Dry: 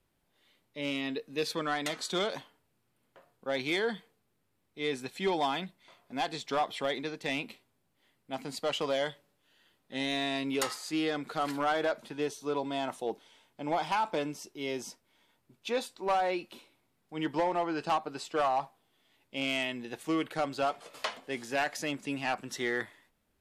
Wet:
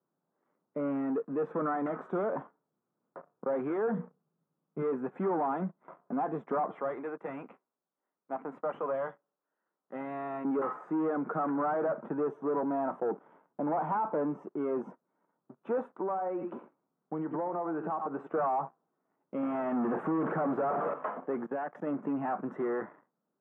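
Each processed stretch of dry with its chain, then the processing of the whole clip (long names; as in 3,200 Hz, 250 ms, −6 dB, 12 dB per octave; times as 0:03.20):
0:03.85–0:04.82: parametric band 150 Hz +12.5 dB 0.56 octaves + mains-hum notches 60/120/180/240/300/360/420/480 Hz
0:06.77–0:10.45: high-pass filter 630 Hz 6 dB per octave + dynamic equaliser 2,600 Hz, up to +5 dB, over −49 dBFS, Q 1.4 + tube saturation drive 28 dB, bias 0.65
0:15.99–0:18.27: single-tap delay 96 ms −15 dB + downward compressor 10 to 1, threshold −39 dBFS
0:19.43–0:20.94: downward compressor, threshold −38 dBFS + power curve on the samples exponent 0.35
0:21.46–0:21.87: parametric band 3,300 Hz +8 dB 0.37 octaves + output level in coarse steps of 20 dB
whole clip: leveller curve on the samples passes 3; downward compressor 2 to 1, threshold −34 dBFS; elliptic band-pass filter 160–1,300 Hz, stop band 50 dB; level +2 dB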